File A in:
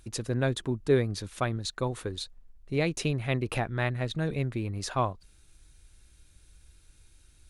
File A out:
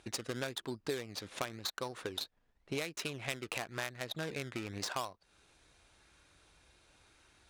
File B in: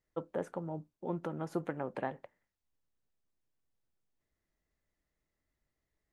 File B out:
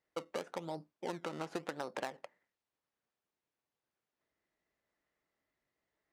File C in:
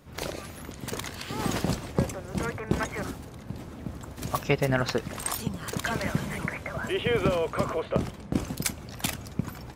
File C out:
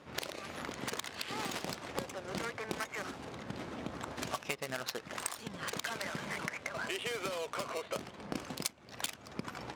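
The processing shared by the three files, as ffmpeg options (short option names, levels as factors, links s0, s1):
-filter_complex "[0:a]asplit=2[s0][s1];[s1]acrusher=samples=18:mix=1:aa=0.000001:lfo=1:lforange=18:lforate=0.93,volume=0.422[s2];[s0][s2]amix=inputs=2:normalize=0,adynamicsmooth=sensitivity=3:basefreq=2000,highpass=f=500:p=1,crystalizer=i=6:c=0,acompressor=threshold=0.0126:ratio=6,volume=1.33"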